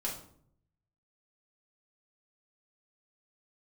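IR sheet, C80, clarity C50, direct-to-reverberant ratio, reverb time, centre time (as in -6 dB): 10.5 dB, 6.5 dB, -4.0 dB, 0.60 s, 29 ms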